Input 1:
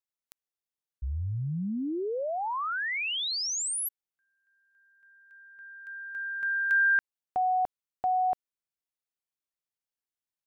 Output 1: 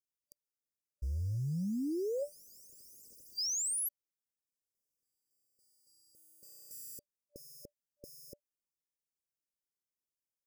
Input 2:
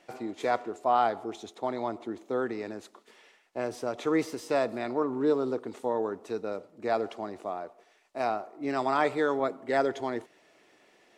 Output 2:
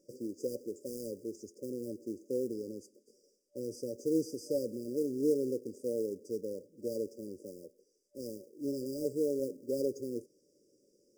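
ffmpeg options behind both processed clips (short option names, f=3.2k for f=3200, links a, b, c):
-af "acrusher=bits=5:mode=log:mix=0:aa=0.000001,afftfilt=real='re*(1-between(b*sr/4096,590,4700))':imag='im*(1-between(b*sr/4096,590,4700))':win_size=4096:overlap=0.75,volume=-3.5dB"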